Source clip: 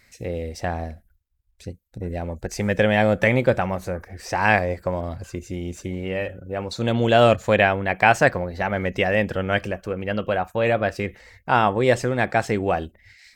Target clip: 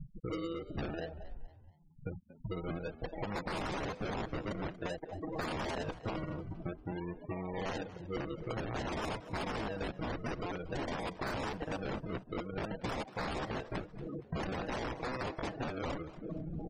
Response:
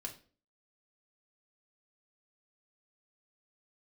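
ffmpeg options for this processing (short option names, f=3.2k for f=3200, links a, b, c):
-filter_complex "[0:a]equalizer=f=125:t=o:w=1:g=-6,equalizer=f=250:t=o:w=1:g=-8,equalizer=f=2k:t=o:w=1:g=10,equalizer=f=4k:t=o:w=1:g=-7,equalizer=f=8k:t=o:w=1:g=-6,areverse,acompressor=mode=upward:threshold=-33dB:ratio=2.5,areverse,acrusher=samples=41:mix=1:aa=0.000001:lfo=1:lforange=24.6:lforate=0.64,asoftclip=type=tanh:threshold=-6.5dB,aecho=1:1:6.3:0.64,aeval=exprs='(mod(10*val(0)+1,2)-1)/10':c=same,atempo=0.8,afftfilt=real='re*gte(hypot(re,im),0.0251)':imag='im*gte(hypot(re,im),0.0251)':win_size=1024:overlap=0.75,acompressor=threshold=-41dB:ratio=6,asplit=2[a][b];[b]asplit=3[c][d][e];[c]adelay=234,afreqshift=72,volume=-17dB[f];[d]adelay=468,afreqshift=144,volume=-25.9dB[g];[e]adelay=702,afreqshift=216,volume=-34.7dB[h];[f][g][h]amix=inputs=3:normalize=0[i];[a][i]amix=inputs=2:normalize=0,volume=4dB"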